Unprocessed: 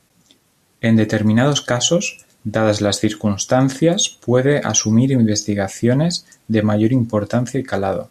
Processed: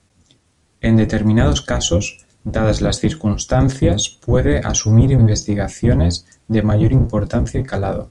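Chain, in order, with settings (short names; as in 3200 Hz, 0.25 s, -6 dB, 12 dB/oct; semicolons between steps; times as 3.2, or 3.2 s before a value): octaver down 1 oct, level +4 dB; downsampling 22050 Hz; gain -2.5 dB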